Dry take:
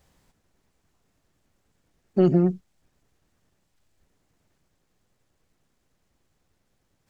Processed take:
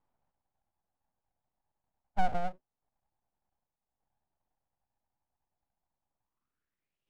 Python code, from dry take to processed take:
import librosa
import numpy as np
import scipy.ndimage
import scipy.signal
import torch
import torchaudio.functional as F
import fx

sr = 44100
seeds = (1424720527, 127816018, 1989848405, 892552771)

y = fx.filter_sweep_bandpass(x, sr, from_hz=410.0, to_hz=1400.0, start_s=6.17, end_s=7.0, q=5.3)
y = np.abs(y)